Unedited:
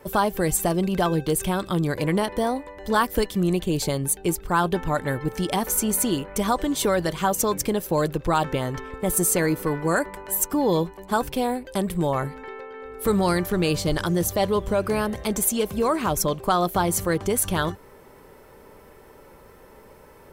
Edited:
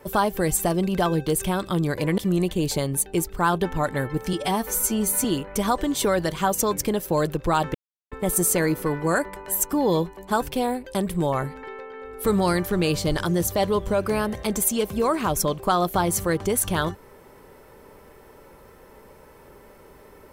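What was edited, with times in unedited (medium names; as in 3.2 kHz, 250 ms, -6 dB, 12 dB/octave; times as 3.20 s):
2.18–3.29 s: delete
5.44–6.05 s: stretch 1.5×
8.55–8.92 s: mute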